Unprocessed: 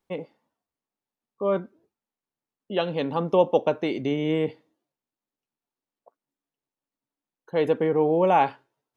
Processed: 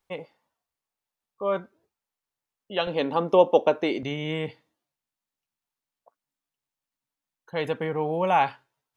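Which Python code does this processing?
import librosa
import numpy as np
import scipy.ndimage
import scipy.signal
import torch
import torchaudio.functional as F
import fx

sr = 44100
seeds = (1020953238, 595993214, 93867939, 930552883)

y = fx.peak_eq(x, sr, hz=fx.steps((0.0, 260.0), (2.87, 100.0), (4.03, 350.0)), db=-11.5, octaves=1.9)
y = F.gain(torch.from_numpy(y), 3.0).numpy()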